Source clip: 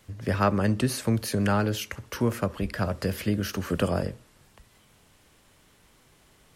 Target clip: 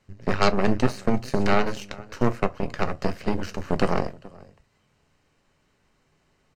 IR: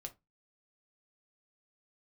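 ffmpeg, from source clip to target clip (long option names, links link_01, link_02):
-filter_complex "[0:a]highshelf=frequency=4100:gain=-10.5,aecho=1:1:427:0.168,aeval=exprs='0.316*(cos(1*acos(clip(val(0)/0.316,-1,1)))-cos(1*PI/2))+0.0708*(cos(6*acos(clip(val(0)/0.316,-1,1)))-cos(6*PI/2))+0.0282*(cos(7*acos(clip(val(0)/0.316,-1,1)))-cos(7*PI/2))':channel_layout=same,bandreject=frequency=3400:width=7.3,asplit=2[link_01][link_02];[link_02]lowpass=frequency=10000:width=0.5412,lowpass=frequency=10000:width=1.3066[link_03];[1:a]atrim=start_sample=2205,highshelf=frequency=3600:gain=11[link_04];[link_03][link_04]afir=irnorm=-1:irlink=0,volume=-0.5dB[link_05];[link_01][link_05]amix=inputs=2:normalize=0,volume=-1.5dB"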